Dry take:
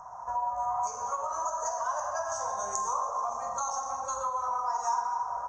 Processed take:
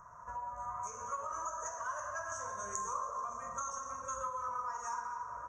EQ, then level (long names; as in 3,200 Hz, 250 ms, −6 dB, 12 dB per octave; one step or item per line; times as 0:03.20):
phaser with its sweep stopped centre 1,900 Hz, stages 4
0.0 dB